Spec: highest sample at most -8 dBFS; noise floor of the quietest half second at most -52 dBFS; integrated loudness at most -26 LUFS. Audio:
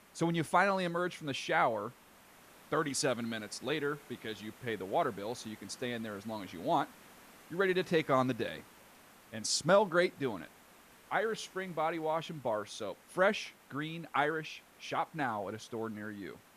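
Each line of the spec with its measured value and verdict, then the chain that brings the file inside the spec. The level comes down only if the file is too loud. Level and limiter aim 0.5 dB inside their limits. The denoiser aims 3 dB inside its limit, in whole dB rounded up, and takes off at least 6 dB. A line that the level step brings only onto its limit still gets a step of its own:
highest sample -15.5 dBFS: OK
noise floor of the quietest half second -59 dBFS: OK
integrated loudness -34.0 LUFS: OK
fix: none

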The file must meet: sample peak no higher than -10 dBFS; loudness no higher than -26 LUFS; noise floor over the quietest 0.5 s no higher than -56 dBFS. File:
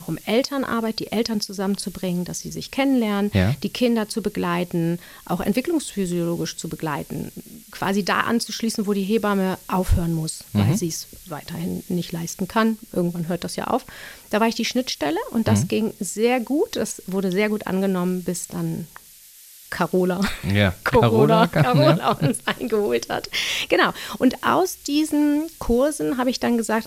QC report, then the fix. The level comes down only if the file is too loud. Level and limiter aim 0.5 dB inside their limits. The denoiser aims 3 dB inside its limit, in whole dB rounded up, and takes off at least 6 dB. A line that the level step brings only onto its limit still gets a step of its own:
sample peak -3.5 dBFS: fail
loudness -22.5 LUFS: fail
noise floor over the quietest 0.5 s -47 dBFS: fail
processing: denoiser 8 dB, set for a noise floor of -47 dBFS; gain -4 dB; limiter -10.5 dBFS

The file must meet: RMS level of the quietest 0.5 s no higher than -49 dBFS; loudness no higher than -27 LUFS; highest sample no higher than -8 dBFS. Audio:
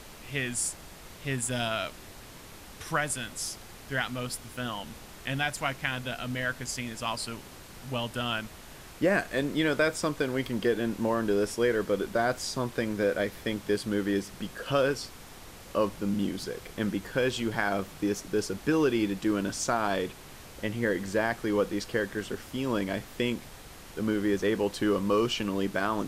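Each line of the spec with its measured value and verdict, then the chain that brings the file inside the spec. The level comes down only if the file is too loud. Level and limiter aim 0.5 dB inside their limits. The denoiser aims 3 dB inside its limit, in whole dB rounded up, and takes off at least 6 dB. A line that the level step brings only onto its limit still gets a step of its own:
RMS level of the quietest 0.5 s -47 dBFS: fail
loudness -30.0 LUFS: OK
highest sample -12.0 dBFS: OK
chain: denoiser 6 dB, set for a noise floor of -47 dBFS

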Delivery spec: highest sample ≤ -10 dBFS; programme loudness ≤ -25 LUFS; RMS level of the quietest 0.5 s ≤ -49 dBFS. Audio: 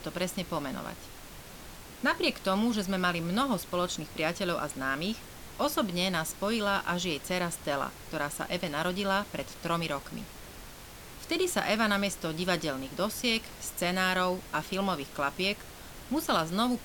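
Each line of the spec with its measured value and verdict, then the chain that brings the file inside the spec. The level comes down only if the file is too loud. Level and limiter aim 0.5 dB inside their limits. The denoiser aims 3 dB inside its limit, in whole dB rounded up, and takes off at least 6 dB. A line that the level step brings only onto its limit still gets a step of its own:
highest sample -13.0 dBFS: OK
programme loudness -30.5 LUFS: OK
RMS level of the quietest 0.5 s -47 dBFS: fail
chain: denoiser 6 dB, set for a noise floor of -47 dBFS

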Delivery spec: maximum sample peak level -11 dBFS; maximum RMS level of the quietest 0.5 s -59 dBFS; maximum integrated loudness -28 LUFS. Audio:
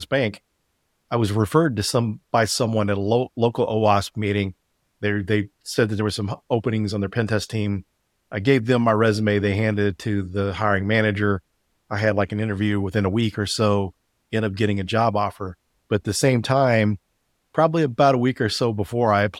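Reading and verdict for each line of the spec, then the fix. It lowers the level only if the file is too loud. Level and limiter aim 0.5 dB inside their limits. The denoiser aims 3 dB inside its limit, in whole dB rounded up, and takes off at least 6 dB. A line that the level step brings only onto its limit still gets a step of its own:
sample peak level -5.0 dBFS: fail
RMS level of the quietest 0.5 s -71 dBFS: OK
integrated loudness -22.0 LUFS: fail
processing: gain -6.5 dB

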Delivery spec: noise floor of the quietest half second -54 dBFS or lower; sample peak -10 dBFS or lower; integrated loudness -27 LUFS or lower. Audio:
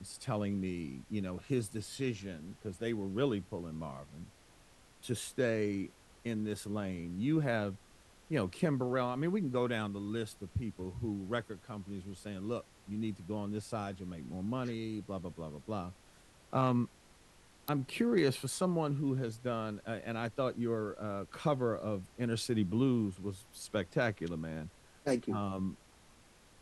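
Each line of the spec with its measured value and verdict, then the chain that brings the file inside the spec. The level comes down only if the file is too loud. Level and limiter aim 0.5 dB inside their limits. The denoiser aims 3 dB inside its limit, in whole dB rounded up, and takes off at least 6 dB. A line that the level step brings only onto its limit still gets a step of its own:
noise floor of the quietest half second -62 dBFS: OK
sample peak -18.0 dBFS: OK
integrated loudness -36.5 LUFS: OK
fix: none

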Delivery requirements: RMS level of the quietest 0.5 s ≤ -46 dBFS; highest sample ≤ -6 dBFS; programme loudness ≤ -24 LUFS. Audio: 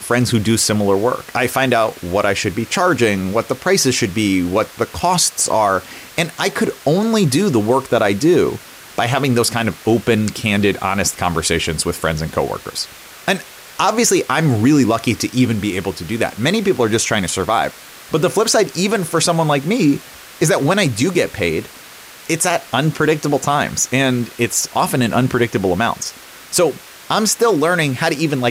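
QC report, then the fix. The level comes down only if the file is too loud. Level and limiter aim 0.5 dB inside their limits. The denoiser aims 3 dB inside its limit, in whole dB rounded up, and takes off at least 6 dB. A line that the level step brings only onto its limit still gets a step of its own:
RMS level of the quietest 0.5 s -38 dBFS: fail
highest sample -4.0 dBFS: fail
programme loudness -16.5 LUFS: fail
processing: denoiser 6 dB, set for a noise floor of -38 dBFS; gain -8 dB

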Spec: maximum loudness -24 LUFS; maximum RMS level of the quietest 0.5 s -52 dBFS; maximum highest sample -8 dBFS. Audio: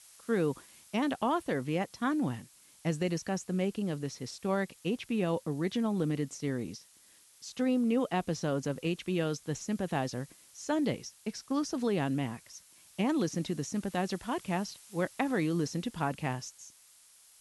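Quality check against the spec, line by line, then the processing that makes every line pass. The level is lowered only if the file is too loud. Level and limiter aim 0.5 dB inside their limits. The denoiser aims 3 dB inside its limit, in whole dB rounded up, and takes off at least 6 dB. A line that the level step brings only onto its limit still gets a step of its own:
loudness -33.0 LUFS: OK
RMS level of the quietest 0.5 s -61 dBFS: OK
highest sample -15.5 dBFS: OK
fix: none

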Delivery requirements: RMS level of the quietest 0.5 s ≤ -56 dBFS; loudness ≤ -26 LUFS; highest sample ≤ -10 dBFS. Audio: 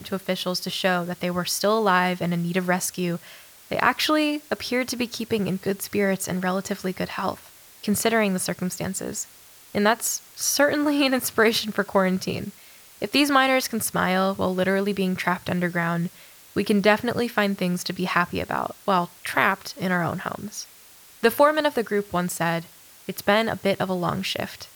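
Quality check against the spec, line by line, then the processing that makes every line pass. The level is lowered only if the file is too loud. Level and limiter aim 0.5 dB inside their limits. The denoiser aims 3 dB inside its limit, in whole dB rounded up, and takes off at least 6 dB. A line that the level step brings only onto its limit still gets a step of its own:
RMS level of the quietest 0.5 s -49 dBFS: fail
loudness -23.5 LUFS: fail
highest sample -5.0 dBFS: fail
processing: denoiser 7 dB, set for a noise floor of -49 dBFS; gain -3 dB; limiter -10.5 dBFS

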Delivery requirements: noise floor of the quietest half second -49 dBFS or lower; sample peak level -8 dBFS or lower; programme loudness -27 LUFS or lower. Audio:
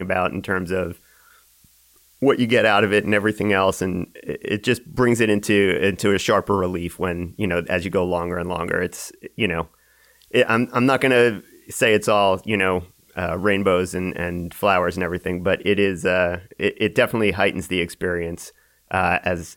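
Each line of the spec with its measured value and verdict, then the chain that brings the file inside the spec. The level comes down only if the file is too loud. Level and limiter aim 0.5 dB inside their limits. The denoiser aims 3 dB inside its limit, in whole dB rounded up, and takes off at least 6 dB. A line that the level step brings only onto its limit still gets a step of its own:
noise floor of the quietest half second -56 dBFS: OK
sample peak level -5.5 dBFS: fail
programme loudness -20.5 LUFS: fail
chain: gain -7 dB

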